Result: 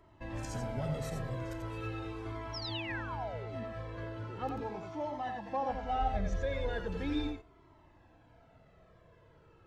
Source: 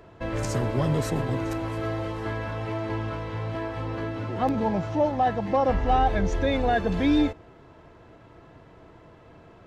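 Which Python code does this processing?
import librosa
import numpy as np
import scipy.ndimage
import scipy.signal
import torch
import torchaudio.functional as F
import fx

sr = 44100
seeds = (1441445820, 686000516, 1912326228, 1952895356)

y = fx.small_body(x, sr, hz=(2600.0, 3700.0), ring_ms=45, db=14, at=(1.7, 2.13))
y = fx.spec_paint(y, sr, seeds[0], shape='fall', start_s=2.53, length_s=1.11, low_hz=210.0, high_hz=5800.0, level_db=-31.0)
y = fx.low_shelf(y, sr, hz=180.0, db=-11.0, at=(4.61, 6.01))
y = y + 10.0 ** (-6.0 / 20.0) * np.pad(y, (int(88 * sr / 1000.0), 0))[:len(y)]
y = fx.comb_cascade(y, sr, direction='falling', hz=0.39)
y = y * 10.0 ** (-7.5 / 20.0)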